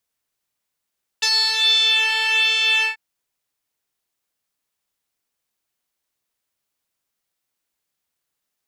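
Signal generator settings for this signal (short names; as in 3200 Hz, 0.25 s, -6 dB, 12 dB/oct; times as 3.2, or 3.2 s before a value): synth patch with pulse-width modulation A5, oscillator 2 square, interval -12 st, detune 24 cents, noise -24.5 dB, filter bandpass, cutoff 2300 Hz, Q 6.3, filter envelope 1 oct, filter decay 0.83 s, attack 12 ms, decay 0.07 s, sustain -6 dB, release 0.13 s, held 1.61 s, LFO 1.3 Hz, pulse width 18%, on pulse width 11%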